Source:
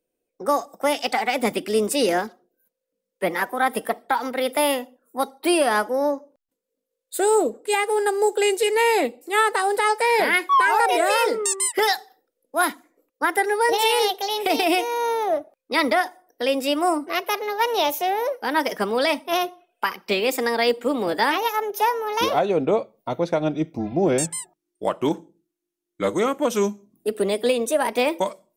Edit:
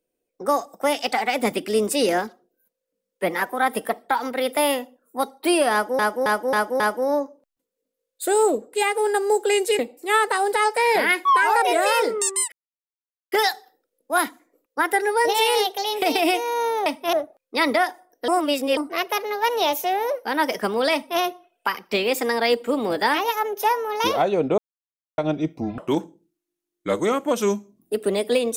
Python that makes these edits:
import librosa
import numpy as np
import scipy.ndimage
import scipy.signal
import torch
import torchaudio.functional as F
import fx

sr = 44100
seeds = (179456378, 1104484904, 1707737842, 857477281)

y = fx.edit(x, sr, fx.repeat(start_s=5.72, length_s=0.27, count=5),
    fx.cut(start_s=8.71, length_s=0.32),
    fx.insert_silence(at_s=11.76, length_s=0.8),
    fx.reverse_span(start_s=16.45, length_s=0.49),
    fx.duplicate(start_s=19.1, length_s=0.27, to_s=15.3),
    fx.silence(start_s=22.75, length_s=0.6),
    fx.cut(start_s=23.95, length_s=0.97), tone=tone)